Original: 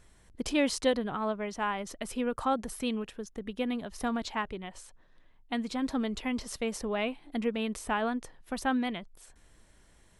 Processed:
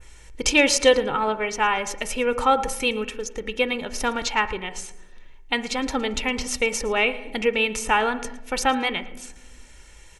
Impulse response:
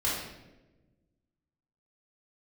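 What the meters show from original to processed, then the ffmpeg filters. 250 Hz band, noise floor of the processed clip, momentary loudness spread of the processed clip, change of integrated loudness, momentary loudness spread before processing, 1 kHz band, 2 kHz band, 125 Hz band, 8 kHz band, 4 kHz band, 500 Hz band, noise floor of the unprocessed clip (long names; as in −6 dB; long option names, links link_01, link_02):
+2.5 dB, −47 dBFS, 13 LU, +10.0 dB, 11 LU, +10.5 dB, +14.0 dB, +4.5 dB, +14.5 dB, +13.0 dB, +10.0 dB, −61 dBFS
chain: -filter_complex "[0:a]equalizer=frequency=100:width_type=o:width=0.67:gain=-5,equalizer=frequency=400:width_type=o:width=0.67:gain=-3,equalizer=frequency=2500:width_type=o:width=0.67:gain=10,equalizer=frequency=6300:width_type=o:width=0.67:gain=10,aecho=1:1:112|224:0.0891|0.0294,asplit=2[link_01][link_02];[1:a]atrim=start_sample=2205,asetrate=48510,aresample=44100,lowpass=2000[link_03];[link_02][link_03]afir=irnorm=-1:irlink=0,volume=-17dB[link_04];[link_01][link_04]amix=inputs=2:normalize=0,adynamicequalizer=threshold=0.00562:dfrequency=5300:dqfactor=0.71:tfrequency=5300:tqfactor=0.71:attack=5:release=100:ratio=0.375:range=2:mode=cutabove:tftype=bell,aecho=1:1:2.2:0.56,volume=7.5dB"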